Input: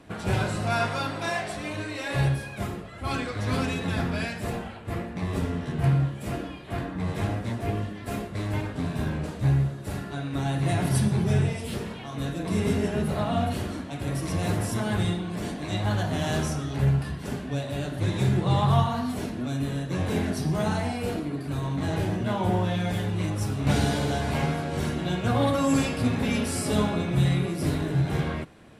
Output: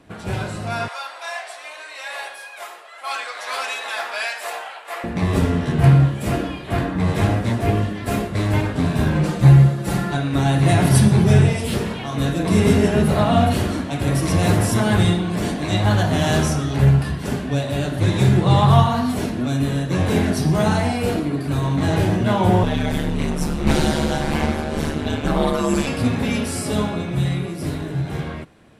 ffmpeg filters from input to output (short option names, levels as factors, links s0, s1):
-filter_complex "[0:a]asettb=1/sr,asplit=3[s0][s1][s2];[s0]atrim=end=0.884[s3];[s1]atrim=start=0.88:end=5.04,asetpts=PTS-STARTPTS,afade=t=in:d=0.004:c=qsin,afade=t=out:st=4.156:d=0.004:c=qsin,highpass=f=670:w=0.5412,highpass=f=670:w=1.3066[s4];[s2]atrim=start=5.036[s5];[s3][s4]acrossfade=d=0.004:c1=hsin:c2=qsin[s6];[s6][s5]acrossfade=d=0.004:c1=qsin:c2=hsin,asettb=1/sr,asplit=3[s7][s8][s9];[s7]atrim=end=9.154[s10];[s8]atrim=start=9.15:end=10.17,asetpts=PTS-STARTPTS,afade=t=in:d=0.004:c=qsin,afade=t=out:st=1.016:d=0.004:c=qsin,aecho=1:1:5.8:0.79,atrim=end_sample=44982[s11];[s9]atrim=start=10.166[s12];[s10][s11]acrossfade=d=0.004:c1=hsin:c2=qsin[s13];[s13][s12]acrossfade=d=0.004:c1=qsin:c2=hsin,asettb=1/sr,asplit=3[s14][s15][s16];[s14]atrim=end=22.634[s17];[s15]atrim=start=22.63:end=25.87,asetpts=PTS-STARTPTS,afade=t=in:d=0.004:c=qsin,afade=t=out:st=3.236:d=0.004:c=qsin,aeval=exprs='val(0)*sin(2*PI*74*n/s)':c=same[s18];[s16]atrim=start=25.866[s19];[s17][s18]acrossfade=d=0.004:c1=hsin:c2=qsin[s20];[s20][s19]acrossfade=d=0.004:c1=qsin:c2=hsin,dynaudnorm=f=310:g=21:m=4.22"